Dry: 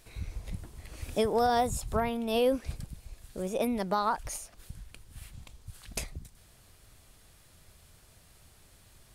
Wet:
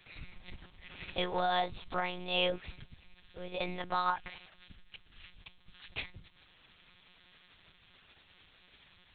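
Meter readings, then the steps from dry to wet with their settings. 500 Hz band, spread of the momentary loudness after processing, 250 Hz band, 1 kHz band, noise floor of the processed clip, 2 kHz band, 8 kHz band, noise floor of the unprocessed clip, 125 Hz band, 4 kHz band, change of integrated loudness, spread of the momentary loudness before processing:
-8.0 dB, 23 LU, -10.5 dB, -3.5 dB, -64 dBFS, +2.5 dB, under -40 dB, -59 dBFS, -8.5 dB, +3.5 dB, -4.0 dB, 23 LU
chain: monotone LPC vocoder at 8 kHz 180 Hz; tilt shelf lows -9 dB, about 1200 Hz; gain -1 dB

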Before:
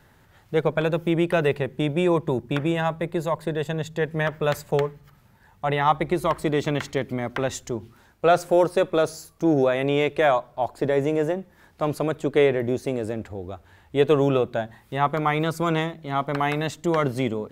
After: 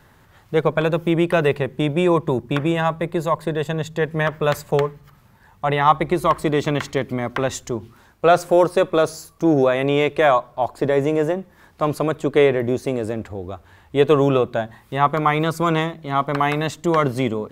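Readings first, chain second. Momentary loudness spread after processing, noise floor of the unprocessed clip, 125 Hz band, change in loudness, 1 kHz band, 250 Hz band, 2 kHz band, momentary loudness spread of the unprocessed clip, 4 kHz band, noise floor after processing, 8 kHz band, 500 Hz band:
9 LU, -57 dBFS, +3.5 dB, +4.0 dB, +5.0 dB, +3.5 dB, +3.5 dB, 9 LU, +3.5 dB, -53 dBFS, +3.5 dB, +3.5 dB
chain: bell 1100 Hz +5.5 dB 0.22 oct; gain +3.5 dB

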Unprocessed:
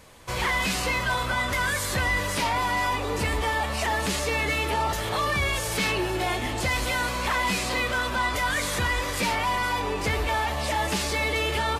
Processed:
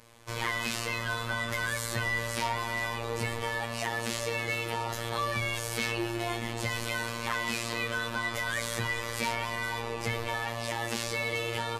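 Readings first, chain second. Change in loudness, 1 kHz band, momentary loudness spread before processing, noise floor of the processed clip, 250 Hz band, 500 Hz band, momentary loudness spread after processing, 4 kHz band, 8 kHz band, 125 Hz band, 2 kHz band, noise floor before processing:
-6.0 dB, -8.5 dB, 2 LU, -36 dBFS, -6.0 dB, -5.5 dB, 3 LU, -6.0 dB, -5.5 dB, -5.5 dB, -5.5 dB, -30 dBFS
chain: robotiser 116 Hz; gain -3.5 dB

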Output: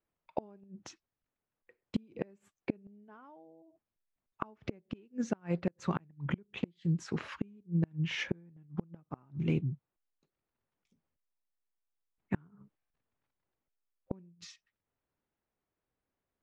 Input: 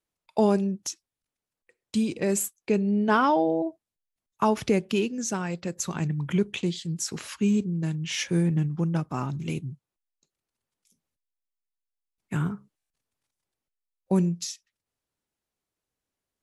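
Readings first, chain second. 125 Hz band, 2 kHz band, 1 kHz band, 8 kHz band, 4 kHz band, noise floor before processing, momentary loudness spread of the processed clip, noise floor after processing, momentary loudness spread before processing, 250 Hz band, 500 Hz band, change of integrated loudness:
-8.5 dB, -9.5 dB, -17.5 dB, -23.0 dB, -11.5 dB, under -85 dBFS, 19 LU, under -85 dBFS, 11 LU, -11.5 dB, -15.0 dB, -11.0 dB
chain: LPF 2000 Hz 12 dB/oct; flipped gate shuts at -20 dBFS, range -34 dB; gain +1 dB

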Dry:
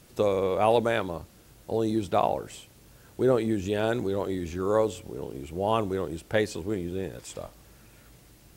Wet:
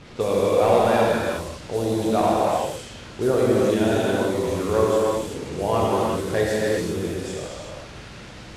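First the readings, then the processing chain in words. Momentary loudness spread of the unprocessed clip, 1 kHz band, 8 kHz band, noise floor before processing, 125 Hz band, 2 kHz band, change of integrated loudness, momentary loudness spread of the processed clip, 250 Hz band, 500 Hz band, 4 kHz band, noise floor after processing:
16 LU, +6.0 dB, +9.5 dB, -55 dBFS, +6.0 dB, +6.0 dB, +5.5 dB, 16 LU, +6.0 dB, +6.5 dB, +7.0 dB, -40 dBFS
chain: delta modulation 64 kbps, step -37.5 dBFS; non-linear reverb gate 0.42 s flat, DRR -5.5 dB; low-pass opened by the level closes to 2800 Hz, open at -22 dBFS

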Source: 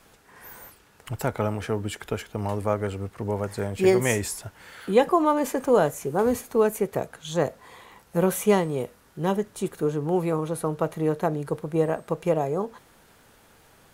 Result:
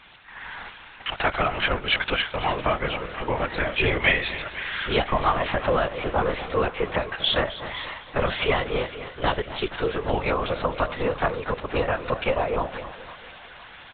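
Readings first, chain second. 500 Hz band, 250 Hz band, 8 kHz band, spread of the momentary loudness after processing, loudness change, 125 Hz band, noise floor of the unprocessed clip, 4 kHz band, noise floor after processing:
-2.0 dB, -5.5 dB, under -40 dB, 14 LU, +0.5 dB, -2.0 dB, -57 dBFS, +13.5 dB, -45 dBFS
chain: HPF 400 Hz; compressor 6:1, threshold -27 dBFS, peak gain reduction 12.5 dB; tilt shelf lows -4.5 dB; echo 0.259 s -15 dB; LPC vocoder at 8 kHz whisper; AGC gain up to 5 dB; bell 2800 Hz +6 dB 2.8 oct; split-band echo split 880 Hz, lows 0.236 s, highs 0.507 s, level -15 dB; gain +3 dB

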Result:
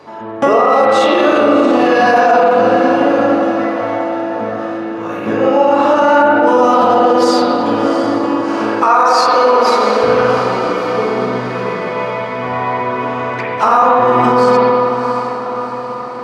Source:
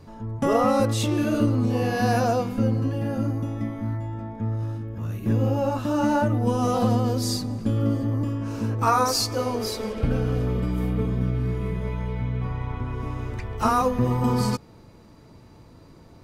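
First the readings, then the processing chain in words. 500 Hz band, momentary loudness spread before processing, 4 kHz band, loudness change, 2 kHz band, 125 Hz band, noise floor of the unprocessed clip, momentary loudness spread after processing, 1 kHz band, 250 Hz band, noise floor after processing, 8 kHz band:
+16.0 dB, 9 LU, +9.0 dB, +12.0 dB, +17.5 dB, -6.0 dB, -49 dBFS, 10 LU, +16.5 dB, +8.5 dB, -23 dBFS, +1.5 dB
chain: HPF 560 Hz 12 dB/oct; tape spacing loss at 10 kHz 20 dB; on a send: diffused feedback echo 0.703 s, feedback 55%, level -13 dB; on the sum: spring tank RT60 1.6 s, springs 42/56 ms, chirp 55 ms, DRR -3.5 dB; maximiser +20 dB; gain -1 dB

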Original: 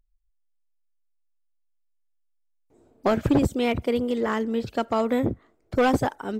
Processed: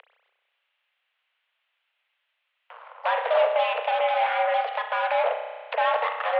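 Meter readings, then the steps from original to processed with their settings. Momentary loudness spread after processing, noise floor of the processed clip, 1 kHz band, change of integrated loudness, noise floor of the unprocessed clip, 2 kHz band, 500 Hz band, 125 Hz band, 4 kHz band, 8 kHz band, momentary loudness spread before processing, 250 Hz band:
6 LU, -77 dBFS, +6.0 dB, 0.0 dB, -70 dBFS, +5.0 dB, +1.0 dB, under -40 dB, +3.0 dB, under -30 dB, 7 LU, under -40 dB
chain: bell 2400 Hz +5.5 dB 1.5 oct; in parallel at +2 dB: compressor, threshold -31 dBFS, peak gain reduction 14.5 dB; on the sum: limiter -16.5 dBFS, peak gain reduction 9 dB; upward compressor, threshold -32 dBFS; added harmonics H 7 -18 dB, 8 -14 dB, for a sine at -16.5 dBFS; spring tank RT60 1.3 s, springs 32 ms, chirp 30 ms, DRR 5 dB; mistuned SSB +330 Hz 160–2900 Hz; mismatched tape noise reduction encoder only

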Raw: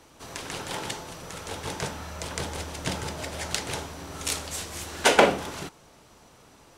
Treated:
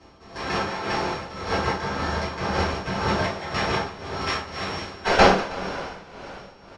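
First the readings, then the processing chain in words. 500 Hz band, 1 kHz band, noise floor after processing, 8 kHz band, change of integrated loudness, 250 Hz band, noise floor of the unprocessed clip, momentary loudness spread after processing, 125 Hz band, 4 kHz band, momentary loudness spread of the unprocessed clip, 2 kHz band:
+3.5 dB, +6.5 dB, -48 dBFS, -9.0 dB, +4.0 dB, +6.0 dB, -55 dBFS, 17 LU, +6.5 dB, +1.5 dB, 17 LU, +4.5 dB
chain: sample sorter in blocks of 8 samples; dynamic EQ 1300 Hz, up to +7 dB, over -44 dBFS, Q 0.8; AGC gain up to 3.5 dB; one-sided clip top -22 dBFS; two-slope reverb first 0.34 s, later 4.3 s, from -21 dB, DRR -10 dB; downsampling 22050 Hz; air absorption 120 m; on a send: echo 0.319 s -11 dB; on the sum: tremolo 1.9 Hz, depth 69%; gain -2 dB

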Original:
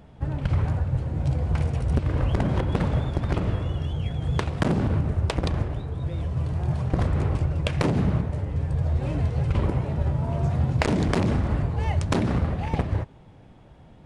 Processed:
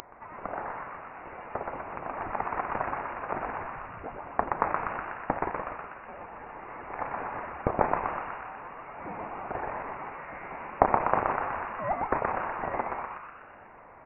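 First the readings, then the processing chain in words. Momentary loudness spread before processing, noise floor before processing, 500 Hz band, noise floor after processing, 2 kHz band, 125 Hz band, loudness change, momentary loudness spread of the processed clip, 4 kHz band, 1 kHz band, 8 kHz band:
5 LU, -49 dBFS, -2.5 dB, -50 dBFS, +0.5 dB, -24.0 dB, -7.5 dB, 15 LU, under -20 dB, +6.0 dB, n/a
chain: upward compressor, threshold -34 dBFS; resonant high-pass 2000 Hz, resonance Q 4.4; frequency-shifting echo 0.123 s, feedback 57%, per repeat -130 Hz, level -3.5 dB; inverted band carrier 2800 Hz; gain +1 dB

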